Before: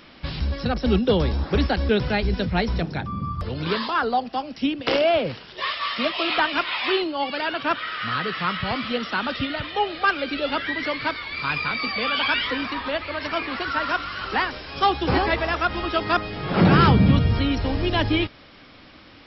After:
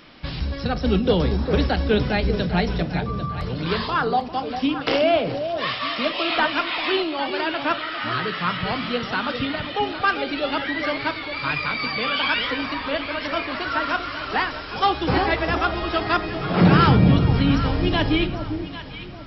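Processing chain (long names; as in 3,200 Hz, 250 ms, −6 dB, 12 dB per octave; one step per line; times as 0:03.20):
delay that swaps between a low-pass and a high-pass 399 ms, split 810 Hz, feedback 57%, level −7 dB
rectangular room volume 360 cubic metres, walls furnished, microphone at 0.47 metres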